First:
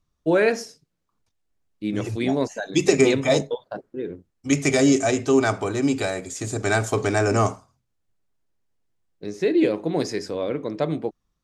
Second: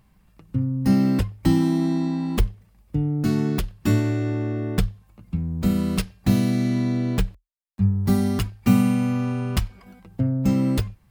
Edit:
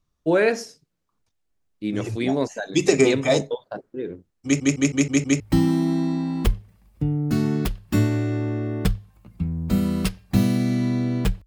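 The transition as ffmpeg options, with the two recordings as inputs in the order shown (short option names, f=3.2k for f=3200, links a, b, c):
-filter_complex "[0:a]apad=whole_dur=11.46,atrim=end=11.46,asplit=6[a][b][c][d][e][f];[a]atrim=end=4.602[g];[b]atrim=start=4.438:end=4.602[h];[c]atrim=start=4.438:end=4.602[i];[d]atrim=start=4.438:end=4.602[j];[e]atrim=start=4.438:end=4.602[k];[f]atrim=start=4.438:end=4.602[l];[1:a]atrim=start=1.328:end=7.39[m];[g][h]acrossfade=d=0.004:c1=hsin:c2=hsin[n];[n][i]acrossfade=d=0.004:c1=hsin:c2=hsin[o];[o][j]acrossfade=d=0.004:c1=hsin:c2=hsin[p];[p][k]acrossfade=d=0.004:c1=hsin:c2=hsin[q];[q][l]acrossfade=d=0.004:c1=hsin:c2=hsin[r];[r][m]acrossfade=d=0.004:c1=hsin:c2=hsin"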